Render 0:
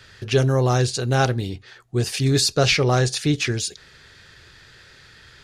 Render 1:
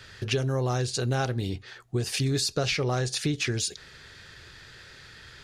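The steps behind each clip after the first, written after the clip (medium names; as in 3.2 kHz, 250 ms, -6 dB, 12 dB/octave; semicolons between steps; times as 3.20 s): compression 6:1, threshold -24 dBFS, peak gain reduction 11 dB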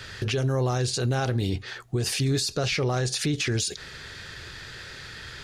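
peak limiter -25.5 dBFS, peak gain reduction 11.5 dB; trim +7.5 dB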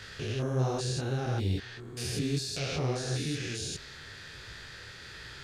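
spectrogram pixelated in time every 200 ms; detune thickener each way 46 cents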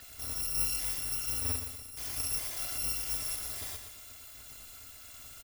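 bit-reversed sample order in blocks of 256 samples; feedback delay 120 ms, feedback 45%, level -8 dB; trim -4 dB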